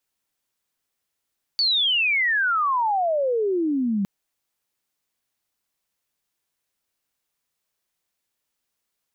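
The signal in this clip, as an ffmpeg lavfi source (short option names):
-f lavfi -i "aevalsrc='pow(10,(-17.5-2.5*t/2.46)/20)*sin(2*PI*4600*2.46/log(190/4600)*(exp(log(190/4600)*t/2.46)-1))':d=2.46:s=44100"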